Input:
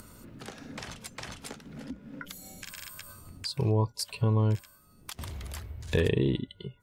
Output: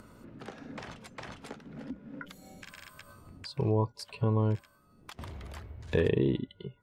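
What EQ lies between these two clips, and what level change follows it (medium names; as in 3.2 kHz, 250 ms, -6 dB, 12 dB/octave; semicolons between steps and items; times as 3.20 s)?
low-pass 1.5 kHz 6 dB/octave; bass shelf 130 Hz -8 dB; +1.5 dB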